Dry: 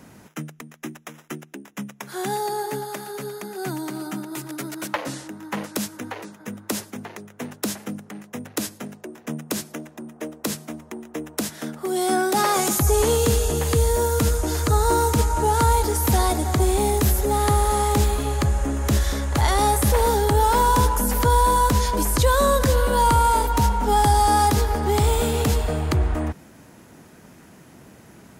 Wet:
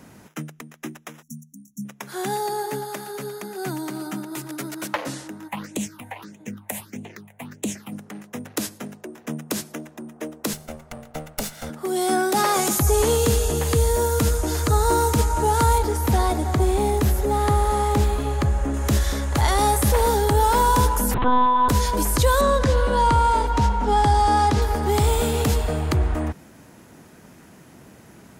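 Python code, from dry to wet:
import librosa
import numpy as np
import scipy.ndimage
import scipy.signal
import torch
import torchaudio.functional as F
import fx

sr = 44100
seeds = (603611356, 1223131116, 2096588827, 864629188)

y = fx.spec_erase(x, sr, start_s=1.22, length_s=0.63, low_hz=270.0, high_hz=5500.0)
y = fx.phaser_stages(y, sr, stages=6, low_hz=330.0, high_hz=1400.0, hz=1.6, feedback_pct=30, at=(5.47, 7.91), fade=0.02)
y = fx.lower_of_two(y, sr, delay_ms=1.4, at=(10.53, 11.7))
y = fx.high_shelf(y, sr, hz=3800.0, db=-8.0, at=(15.78, 18.74))
y = fx.lpc_monotone(y, sr, seeds[0], pitch_hz=250.0, order=10, at=(21.14, 21.69))
y = fx.air_absorb(y, sr, metres=78.0, at=(22.41, 24.62))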